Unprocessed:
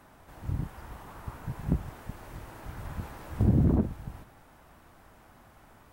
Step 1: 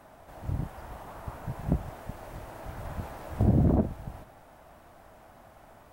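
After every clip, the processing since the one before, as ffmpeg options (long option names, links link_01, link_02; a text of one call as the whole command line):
ffmpeg -i in.wav -af "equalizer=frequency=650:width_type=o:width=0.67:gain=8.5" out.wav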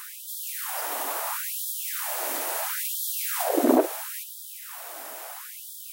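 ffmpeg -i in.wav -af "crystalizer=i=7.5:c=0,afftfilt=real='re*gte(b*sr/1024,240*pow(3200/240,0.5+0.5*sin(2*PI*0.74*pts/sr)))':imag='im*gte(b*sr/1024,240*pow(3200/240,0.5+0.5*sin(2*PI*0.74*pts/sr)))':win_size=1024:overlap=0.75,volume=9dB" out.wav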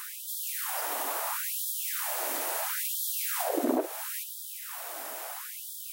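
ffmpeg -i in.wav -af "acompressor=threshold=-30dB:ratio=2" out.wav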